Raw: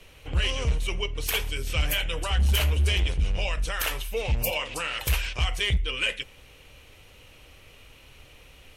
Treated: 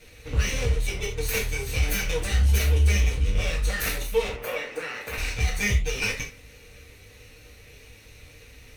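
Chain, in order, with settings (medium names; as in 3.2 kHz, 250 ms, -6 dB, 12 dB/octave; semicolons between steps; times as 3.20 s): comb filter that takes the minimum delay 0.48 ms; 4.28–5.18 s: three-band isolator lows -22 dB, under 250 Hz, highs -14 dB, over 2.4 kHz; peak limiter -19.5 dBFS, peak gain reduction 5 dB; flange 1.5 Hz, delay 8.4 ms, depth 5.6 ms, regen -80%; reverberation, pre-delay 3 ms, DRR -2 dB; trim +4 dB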